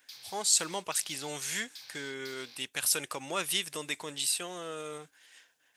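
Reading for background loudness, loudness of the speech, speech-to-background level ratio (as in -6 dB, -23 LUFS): -48.5 LUFS, -32.0 LUFS, 16.5 dB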